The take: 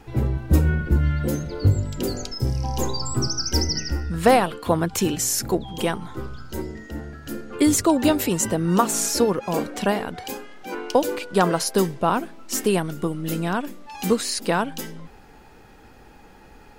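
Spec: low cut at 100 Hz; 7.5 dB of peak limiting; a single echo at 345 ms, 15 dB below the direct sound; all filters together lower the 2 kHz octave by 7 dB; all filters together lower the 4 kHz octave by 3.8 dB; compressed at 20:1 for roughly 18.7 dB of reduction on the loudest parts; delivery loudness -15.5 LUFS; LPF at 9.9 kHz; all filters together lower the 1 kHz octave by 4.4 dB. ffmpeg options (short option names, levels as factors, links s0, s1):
-af "highpass=100,lowpass=9900,equalizer=f=1000:t=o:g=-4.5,equalizer=f=2000:t=o:g=-7,equalizer=f=4000:t=o:g=-3.5,acompressor=threshold=0.0224:ratio=20,alimiter=level_in=1.78:limit=0.0631:level=0:latency=1,volume=0.562,aecho=1:1:345:0.178,volume=15.8"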